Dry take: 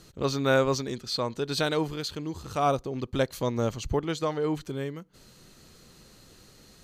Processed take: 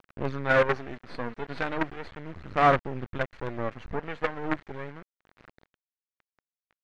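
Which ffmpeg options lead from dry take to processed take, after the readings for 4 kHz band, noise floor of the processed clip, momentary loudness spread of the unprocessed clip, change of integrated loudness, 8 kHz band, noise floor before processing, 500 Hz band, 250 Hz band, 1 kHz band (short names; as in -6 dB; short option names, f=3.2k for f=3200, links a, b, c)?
-10.0 dB, under -85 dBFS, 10 LU, 0.0 dB, under -15 dB, -55 dBFS, -2.0 dB, -4.0 dB, +3.0 dB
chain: -af "aphaser=in_gain=1:out_gain=1:delay=4.3:decay=0.5:speed=0.37:type=sinusoidal,acrusher=bits=4:dc=4:mix=0:aa=0.000001,lowpass=f=1.9k:t=q:w=1.7,volume=-3dB"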